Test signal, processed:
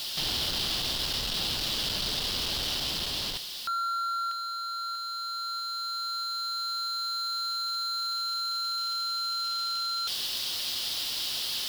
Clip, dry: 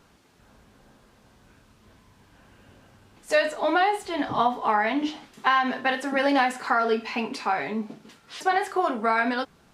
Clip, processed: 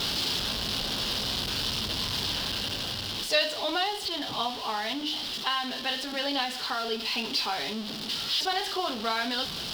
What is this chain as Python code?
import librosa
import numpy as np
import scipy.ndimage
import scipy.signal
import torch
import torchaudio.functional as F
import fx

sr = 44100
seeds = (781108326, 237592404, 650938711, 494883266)

y = x + 0.5 * 10.0 ** (-23.5 / 20.0) * np.sign(x)
y = fx.rider(y, sr, range_db=5, speed_s=2.0)
y = fx.cheby_harmonics(y, sr, harmonics=(3,), levels_db=(-18,), full_scale_db=-9.0)
y = fx.band_shelf(y, sr, hz=3900.0, db=15.0, octaves=1.1)
y = F.gain(torch.from_numpy(y), -7.5).numpy()